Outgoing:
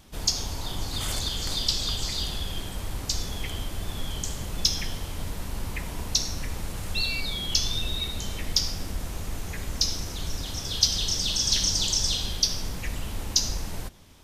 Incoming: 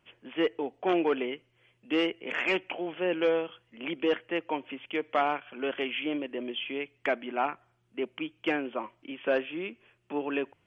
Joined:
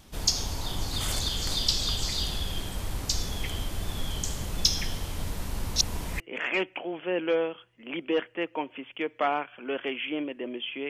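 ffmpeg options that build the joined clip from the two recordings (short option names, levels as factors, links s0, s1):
-filter_complex "[0:a]apad=whole_dur=10.89,atrim=end=10.89,asplit=2[s0][s1];[s0]atrim=end=5.762[s2];[s1]atrim=start=5.758:end=6.202,asetpts=PTS-STARTPTS,areverse[s3];[1:a]atrim=start=2.138:end=6.83[s4];[s2][s3]acrossfade=d=0.004:c1=hsin:c2=hsin[s5];[s5][s4]acrossfade=d=0.004:c1=hsin:c2=hsin"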